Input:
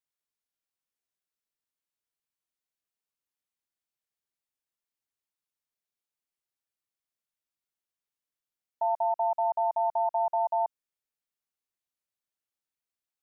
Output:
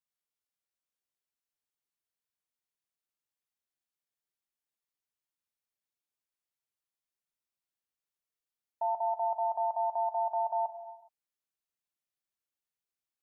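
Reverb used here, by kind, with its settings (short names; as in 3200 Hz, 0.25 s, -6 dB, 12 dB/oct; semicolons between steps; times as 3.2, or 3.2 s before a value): non-linear reverb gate 0.44 s falling, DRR 7.5 dB; gain -4 dB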